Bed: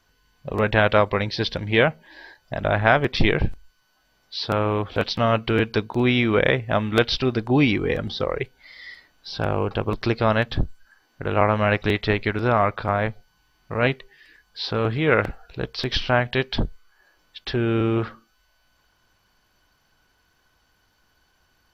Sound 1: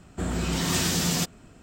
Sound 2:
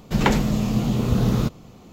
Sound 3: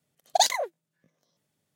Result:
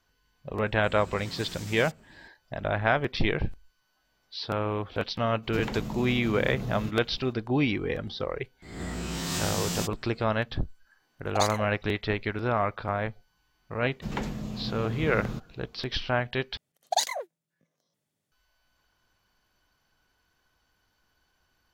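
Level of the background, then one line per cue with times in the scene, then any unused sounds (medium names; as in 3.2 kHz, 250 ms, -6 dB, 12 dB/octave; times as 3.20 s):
bed -7 dB
0.66 s: add 1 -7.5 dB + compression 3:1, threshold -35 dBFS
5.42 s: add 2 -8 dB, fades 0.02 s + compression, threshold -22 dBFS
8.62 s: add 1 -8 dB + reverse spectral sustain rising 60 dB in 0.69 s
11.00 s: add 3 -8.5 dB
13.91 s: add 2 -13.5 dB + treble shelf 9.1 kHz -6 dB
16.57 s: replace with 3 -4.5 dB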